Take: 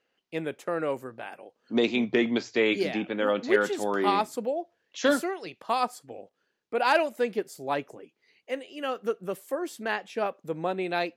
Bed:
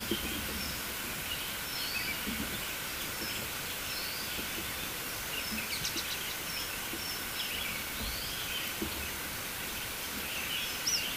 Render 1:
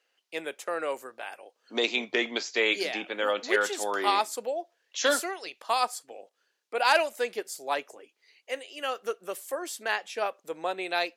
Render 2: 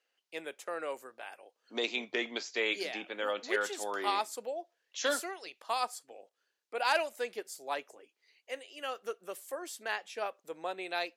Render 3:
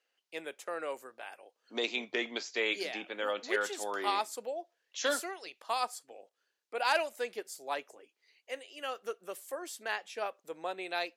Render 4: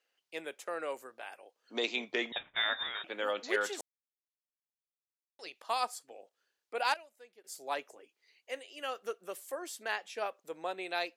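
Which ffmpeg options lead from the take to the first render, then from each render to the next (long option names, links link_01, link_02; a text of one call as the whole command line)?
ffmpeg -i in.wav -af "highpass=490,equalizer=frequency=8000:width_type=o:width=2.4:gain=8" out.wav
ffmpeg -i in.wav -af "volume=-6.5dB" out.wav
ffmpeg -i in.wav -af anull out.wav
ffmpeg -i in.wav -filter_complex "[0:a]asettb=1/sr,asplit=3[link_01][link_02][link_03];[link_01]atrim=end=2.324[link_04];[link_02]atrim=start=2.32:end=3.04,asetpts=PTS-STARTPTS,afade=type=in:duration=0.004:curve=qsin,afade=type=out:start_time=0.716:duration=0.004:curve=qsin,lowpass=frequency=3400:width_type=q:width=0.5098,lowpass=frequency=3400:width_type=q:width=0.6013,lowpass=frequency=3400:width_type=q:width=0.9,lowpass=frequency=3400:width_type=q:width=2.563,afreqshift=-4000[link_05];[link_03]atrim=start=3.036[link_06];[link_04][link_05]acrossfade=duration=0.004:curve1=hsin:curve2=qsin[link_07];[link_07][link_06]acrossfade=duration=0.004:curve1=qsin:curve2=hsin,asplit=5[link_08][link_09][link_10][link_11][link_12];[link_08]atrim=end=3.81,asetpts=PTS-STARTPTS,afade=type=out:start_time=3.806:duration=0.004:curve=hsin[link_13];[link_09]atrim=start=3.81:end=5.39,asetpts=PTS-STARTPTS,volume=0[link_14];[link_10]atrim=start=5.39:end=6.94,asetpts=PTS-STARTPTS,afade=type=in:duration=0.004:curve=hsin,afade=type=out:start_time=1.36:duration=0.19:curve=log:silence=0.1[link_15];[link_11]atrim=start=6.94:end=7.44,asetpts=PTS-STARTPTS,volume=-20dB[link_16];[link_12]atrim=start=7.44,asetpts=PTS-STARTPTS,afade=type=in:duration=0.19:curve=log:silence=0.1[link_17];[link_13][link_14][link_15][link_16][link_17]concat=n=5:v=0:a=1" out.wav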